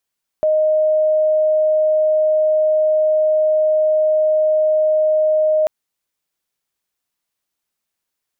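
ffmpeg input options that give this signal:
ffmpeg -f lavfi -i "aevalsrc='0.251*sin(2*PI*620*t)':duration=5.24:sample_rate=44100" out.wav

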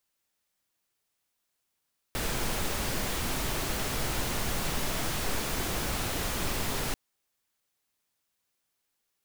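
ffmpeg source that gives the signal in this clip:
ffmpeg -f lavfi -i "anoisesrc=color=pink:amplitude=0.153:duration=4.79:sample_rate=44100:seed=1" out.wav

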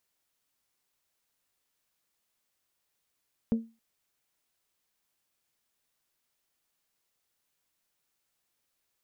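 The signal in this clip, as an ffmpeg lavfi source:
ffmpeg -f lavfi -i "aevalsrc='0.106*pow(10,-3*t/0.29)*sin(2*PI*227*t)+0.0282*pow(10,-3*t/0.179)*sin(2*PI*454*t)+0.0075*pow(10,-3*t/0.157)*sin(2*PI*544.8*t)+0.002*pow(10,-3*t/0.134)*sin(2*PI*681*t)+0.000531*pow(10,-3*t/0.11)*sin(2*PI*908*t)':duration=0.27:sample_rate=44100" out.wav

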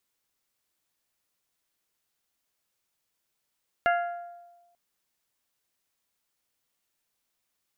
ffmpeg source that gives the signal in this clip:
ffmpeg -f lavfi -i "aevalsrc='0.1*pow(10,-3*t/1.2)*sin(2*PI*696*t)+0.0631*pow(10,-3*t/0.739)*sin(2*PI*1392*t)+0.0398*pow(10,-3*t/0.65)*sin(2*PI*1670.4*t)+0.0251*pow(10,-3*t/0.556)*sin(2*PI*2088*t)+0.0158*pow(10,-3*t/0.455)*sin(2*PI*2784*t)':duration=0.89:sample_rate=44100" out.wav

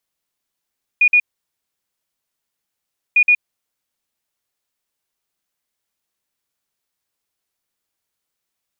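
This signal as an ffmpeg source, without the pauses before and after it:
ffmpeg -f lavfi -i "aevalsrc='0.376*sin(2*PI*2450*t)*clip(min(mod(mod(t,2.15),0.12),0.07-mod(mod(t,2.15),0.12))/0.005,0,1)*lt(mod(t,2.15),0.24)':duration=4.3:sample_rate=44100" out.wav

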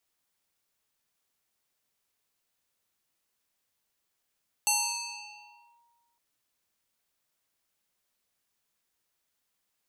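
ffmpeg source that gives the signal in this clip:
ffmpeg -f lavfi -i "aevalsrc='0.0891*pow(10,-3*t/1.61)*sin(2*PI*942*t+5.4*clip(1-t/1.14,0,1)*sin(2*PI*1.89*942*t))':duration=1.51:sample_rate=44100" out.wav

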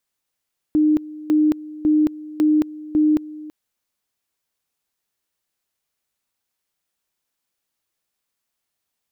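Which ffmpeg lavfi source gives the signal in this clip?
ffmpeg -f lavfi -i "aevalsrc='pow(10,(-12.5-19*gte(mod(t,0.55),0.22))/20)*sin(2*PI*305*t)':duration=2.75:sample_rate=44100" out.wav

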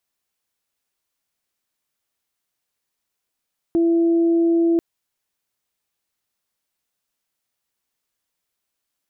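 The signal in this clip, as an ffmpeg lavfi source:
ffmpeg -f lavfi -i "aevalsrc='0.2*sin(2*PI*335*t)+0.0224*sin(2*PI*670*t)':duration=1.04:sample_rate=44100" out.wav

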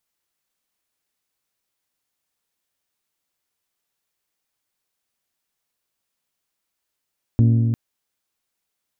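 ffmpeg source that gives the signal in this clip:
ffmpeg -f lavfi -i "aevalsrc='0.282*pow(10,-3*t/2.85)*sin(2*PI*115*t)+0.126*pow(10,-3*t/2.315)*sin(2*PI*230*t)+0.0562*pow(10,-3*t/2.192)*sin(2*PI*276*t)+0.0251*pow(10,-3*t/2.05)*sin(2*PI*345*t)+0.0112*pow(10,-3*t/1.88)*sin(2*PI*460*t)+0.00501*pow(10,-3*t/1.759)*sin(2*PI*575*t)+0.00224*pow(10,-3*t/1.665)*sin(2*PI*690*t)':duration=0.35:sample_rate=44100" out.wav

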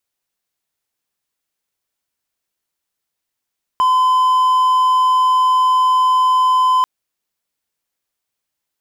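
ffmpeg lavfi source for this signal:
ffmpeg -f lavfi -i "aevalsrc='0.376*(1-4*abs(mod(1020*t+0.25,1)-0.5))':duration=3.04:sample_rate=44100" out.wav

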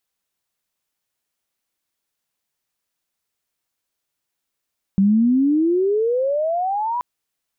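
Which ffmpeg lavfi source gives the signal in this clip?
ffmpeg -f lavfi -i "aevalsrc='pow(10,(-11.5-8.5*t/2.03)/20)*sin(2*PI*190*2.03/log(1000/190)*(exp(log(1000/190)*t/2.03)-1))':duration=2.03:sample_rate=44100" out.wav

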